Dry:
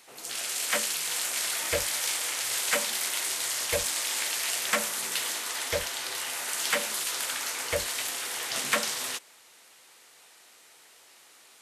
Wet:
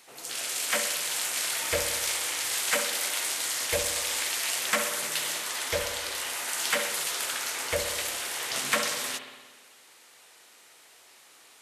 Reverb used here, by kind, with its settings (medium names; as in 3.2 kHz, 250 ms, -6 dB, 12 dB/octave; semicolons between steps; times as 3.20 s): spring tank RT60 1.4 s, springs 58 ms, chirp 30 ms, DRR 6 dB